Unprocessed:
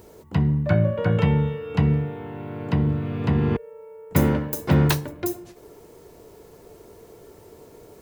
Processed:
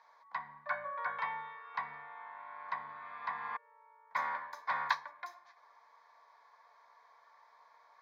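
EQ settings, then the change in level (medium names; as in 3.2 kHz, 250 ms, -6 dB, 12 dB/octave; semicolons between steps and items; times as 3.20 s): ladder band-pass 1.2 kHz, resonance 85%; tilt shelf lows -4.5 dB, about 1.4 kHz; static phaser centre 1.9 kHz, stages 8; +8.0 dB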